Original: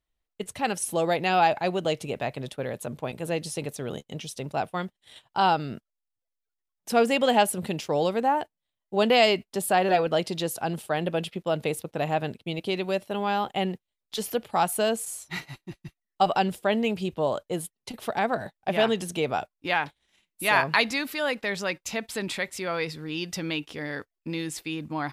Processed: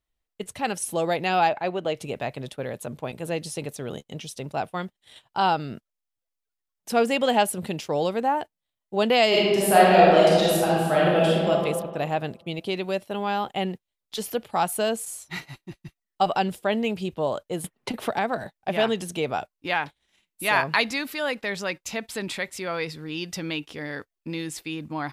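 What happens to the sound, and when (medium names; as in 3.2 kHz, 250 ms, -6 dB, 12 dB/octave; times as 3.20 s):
1.49–1.96 s: tone controls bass -5 dB, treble -11 dB
9.28–11.50 s: reverb throw, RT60 1.6 s, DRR -7 dB
17.64–18.44 s: three bands compressed up and down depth 70%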